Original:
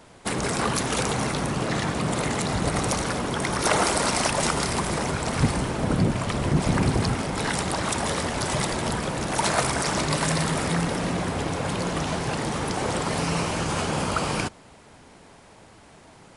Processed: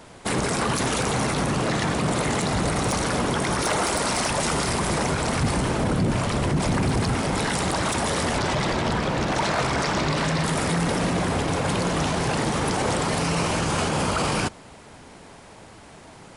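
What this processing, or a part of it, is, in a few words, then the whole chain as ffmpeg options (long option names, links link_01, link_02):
clipper into limiter: -filter_complex "[0:a]asettb=1/sr,asplit=3[link_01][link_02][link_03];[link_01]atrim=end=8.384[link_04];[link_02]atrim=start=8.38:end=10.44,asetpts=PTS-STARTPTS,afade=type=in:duration=0.004:curve=qsin,afade=type=out:start_time=2.056:duration=0.004:curve=qsin,lowpass=5100[link_05];[link_03]atrim=start=10.436[link_06];[link_04][link_05]acrossfade=duration=0.004:curve1=hsin:curve2=qsin[link_07];[link_07][link_06]acrossfade=duration=0.004:curve1=qsin:curve2=hsin,asoftclip=type=hard:threshold=-12.5dB,alimiter=limit=-19.5dB:level=0:latency=1:release=17,volume=4.5dB"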